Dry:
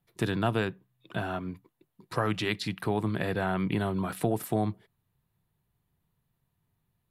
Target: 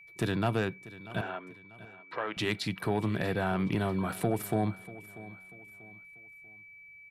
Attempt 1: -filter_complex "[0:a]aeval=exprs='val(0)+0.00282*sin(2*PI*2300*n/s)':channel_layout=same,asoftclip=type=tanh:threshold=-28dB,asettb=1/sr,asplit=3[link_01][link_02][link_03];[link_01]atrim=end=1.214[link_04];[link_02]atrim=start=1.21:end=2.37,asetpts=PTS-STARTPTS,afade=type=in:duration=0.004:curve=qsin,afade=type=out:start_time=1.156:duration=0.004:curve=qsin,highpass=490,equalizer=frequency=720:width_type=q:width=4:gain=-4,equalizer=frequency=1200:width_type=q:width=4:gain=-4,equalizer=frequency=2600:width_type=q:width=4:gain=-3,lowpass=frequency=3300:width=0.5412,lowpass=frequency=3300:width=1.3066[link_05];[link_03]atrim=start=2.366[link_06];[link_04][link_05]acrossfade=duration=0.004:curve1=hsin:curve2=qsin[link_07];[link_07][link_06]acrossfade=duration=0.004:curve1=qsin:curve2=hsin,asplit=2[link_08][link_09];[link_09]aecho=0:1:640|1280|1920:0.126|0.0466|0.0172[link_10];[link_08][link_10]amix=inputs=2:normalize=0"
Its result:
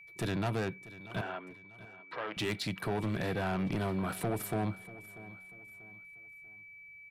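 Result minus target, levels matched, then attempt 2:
soft clipping: distortion +10 dB
-filter_complex "[0:a]aeval=exprs='val(0)+0.00282*sin(2*PI*2300*n/s)':channel_layout=same,asoftclip=type=tanh:threshold=-18.5dB,asettb=1/sr,asplit=3[link_01][link_02][link_03];[link_01]atrim=end=1.214[link_04];[link_02]atrim=start=1.21:end=2.37,asetpts=PTS-STARTPTS,afade=type=in:duration=0.004:curve=qsin,afade=type=out:start_time=1.156:duration=0.004:curve=qsin,highpass=490,equalizer=frequency=720:width_type=q:width=4:gain=-4,equalizer=frequency=1200:width_type=q:width=4:gain=-4,equalizer=frequency=2600:width_type=q:width=4:gain=-3,lowpass=frequency=3300:width=0.5412,lowpass=frequency=3300:width=1.3066[link_05];[link_03]atrim=start=2.366[link_06];[link_04][link_05]acrossfade=duration=0.004:curve1=hsin:curve2=qsin[link_07];[link_07][link_06]acrossfade=duration=0.004:curve1=qsin:curve2=hsin,asplit=2[link_08][link_09];[link_09]aecho=0:1:640|1280|1920:0.126|0.0466|0.0172[link_10];[link_08][link_10]amix=inputs=2:normalize=0"

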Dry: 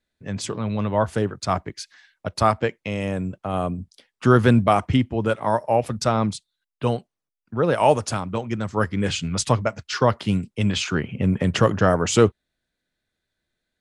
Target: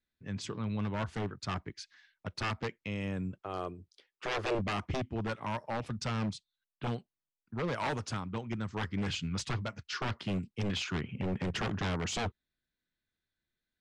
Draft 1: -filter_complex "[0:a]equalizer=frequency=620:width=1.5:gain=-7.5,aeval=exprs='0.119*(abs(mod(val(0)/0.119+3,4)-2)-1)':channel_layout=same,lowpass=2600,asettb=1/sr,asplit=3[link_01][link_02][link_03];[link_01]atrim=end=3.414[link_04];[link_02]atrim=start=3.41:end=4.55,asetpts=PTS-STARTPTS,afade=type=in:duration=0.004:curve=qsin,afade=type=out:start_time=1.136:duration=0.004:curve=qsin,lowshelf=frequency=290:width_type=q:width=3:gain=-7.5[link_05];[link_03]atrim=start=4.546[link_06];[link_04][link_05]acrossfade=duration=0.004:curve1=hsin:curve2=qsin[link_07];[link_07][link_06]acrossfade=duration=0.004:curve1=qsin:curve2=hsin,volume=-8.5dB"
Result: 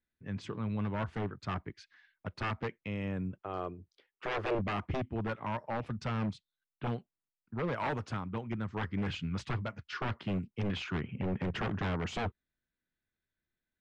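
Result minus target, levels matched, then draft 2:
8,000 Hz band −12.0 dB
-filter_complex "[0:a]equalizer=frequency=620:width=1.5:gain=-7.5,aeval=exprs='0.119*(abs(mod(val(0)/0.119+3,4)-2)-1)':channel_layout=same,lowpass=5700,asettb=1/sr,asplit=3[link_01][link_02][link_03];[link_01]atrim=end=3.414[link_04];[link_02]atrim=start=3.41:end=4.55,asetpts=PTS-STARTPTS,afade=type=in:duration=0.004:curve=qsin,afade=type=out:start_time=1.136:duration=0.004:curve=qsin,lowshelf=frequency=290:width_type=q:width=3:gain=-7.5[link_05];[link_03]atrim=start=4.546[link_06];[link_04][link_05]acrossfade=duration=0.004:curve1=hsin:curve2=qsin[link_07];[link_07][link_06]acrossfade=duration=0.004:curve1=qsin:curve2=hsin,volume=-8.5dB"

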